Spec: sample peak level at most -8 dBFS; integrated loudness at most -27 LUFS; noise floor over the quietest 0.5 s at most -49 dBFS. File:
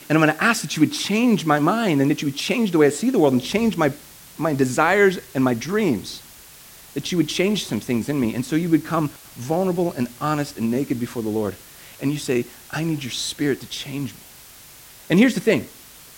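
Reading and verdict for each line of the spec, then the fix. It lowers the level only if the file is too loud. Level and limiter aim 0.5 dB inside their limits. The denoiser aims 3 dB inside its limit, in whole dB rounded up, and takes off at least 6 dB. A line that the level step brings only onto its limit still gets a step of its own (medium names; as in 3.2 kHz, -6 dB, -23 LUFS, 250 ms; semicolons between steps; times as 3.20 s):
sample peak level -3.5 dBFS: fail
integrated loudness -21.0 LUFS: fail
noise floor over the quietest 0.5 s -45 dBFS: fail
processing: trim -6.5 dB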